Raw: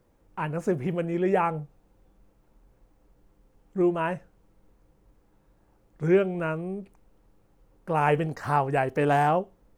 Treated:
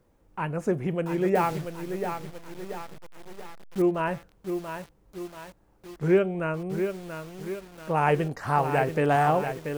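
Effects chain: 1.35–3.82 level-crossing sampler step -35.5 dBFS; lo-fi delay 0.684 s, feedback 55%, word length 7-bit, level -7 dB

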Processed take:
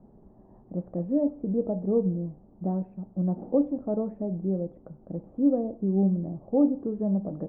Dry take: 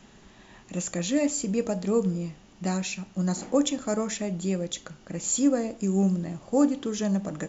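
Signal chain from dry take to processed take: inverse Chebyshev low-pass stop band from 4300 Hz, stop band 80 dB

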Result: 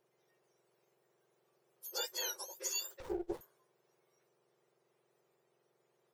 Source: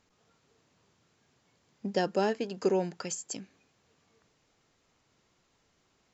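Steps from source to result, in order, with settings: spectrum mirrored in octaves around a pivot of 1600 Hz; 3–3.41 running maximum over 17 samples; gain -5.5 dB

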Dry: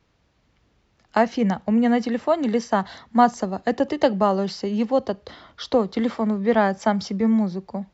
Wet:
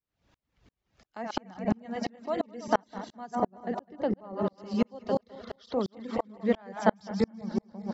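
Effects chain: regenerating reverse delay 0.103 s, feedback 71%, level -5.5 dB; 3.35–4.58 LPF 1200 Hz 6 dB/oct; in parallel at +3 dB: compressor, threshold -27 dBFS, peak gain reduction 16.5 dB; on the sum: reverb removal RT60 0.55 s; dB-ramp tremolo swelling 2.9 Hz, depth 39 dB; gain -3.5 dB

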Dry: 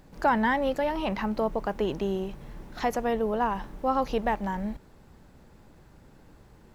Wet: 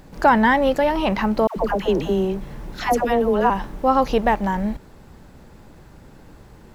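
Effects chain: 1.47–3.5 dispersion lows, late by 95 ms, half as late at 790 Hz; gain +8.5 dB

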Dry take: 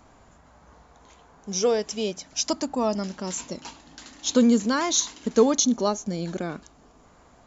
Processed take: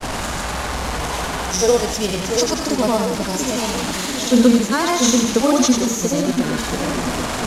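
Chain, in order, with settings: delta modulation 64 kbps, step -26 dBFS; reverse; upward compressor, threshold -29 dBFS; reverse; grains, pitch spread up and down by 0 st; split-band echo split 670 Hz, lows 0.686 s, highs 90 ms, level -5 dB; gain +7 dB

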